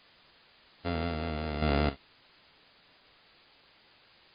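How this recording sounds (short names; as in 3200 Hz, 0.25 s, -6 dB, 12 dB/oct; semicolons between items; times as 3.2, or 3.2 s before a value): a buzz of ramps at a fixed pitch in blocks of 64 samples; random-step tremolo 3.7 Hz, depth 95%; a quantiser's noise floor 10-bit, dither triangular; MP3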